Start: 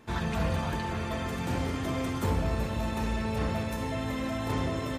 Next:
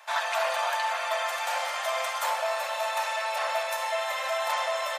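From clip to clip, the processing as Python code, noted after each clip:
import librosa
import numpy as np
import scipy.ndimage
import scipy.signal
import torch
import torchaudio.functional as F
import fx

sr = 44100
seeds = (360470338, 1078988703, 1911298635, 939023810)

y = scipy.signal.sosfilt(scipy.signal.butter(12, 580.0, 'highpass', fs=sr, output='sos'), x)
y = F.gain(torch.from_numpy(y), 8.5).numpy()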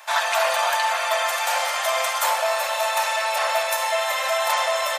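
y = fx.high_shelf(x, sr, hz=5900.0, db=7.0)
y = F.gain(torch.from_numpy(y), 6.0).numpy()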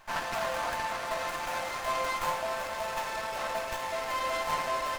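y = scipy.signal.sosfilt(scipy.signal.butter(4, 390.0, 'highpass', fs=sr, output='sos'), x)
y = fx.comb_fb(y, sr, f0_hz=520.0, decay_s=0.36, harmonics='all', damping=0.0, mix_pct=80)
y = fx.running_max(y, sr, window=9)
y = F.gain(torch.from_numpy(y), 2.5).numpy()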